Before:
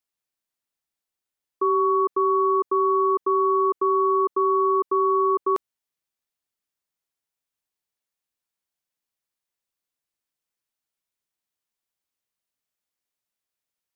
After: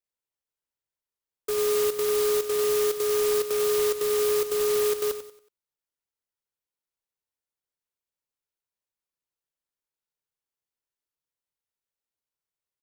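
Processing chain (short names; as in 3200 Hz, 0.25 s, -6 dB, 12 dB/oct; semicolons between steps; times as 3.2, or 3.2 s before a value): comb 2.3 ms, depth 88%; feedback echo 0.101 s, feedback 36%, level -10.5 dB; speed mistake 44.1 kHz file played as 48 kHz; clock jitter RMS 0.13 ms; gain -8 dB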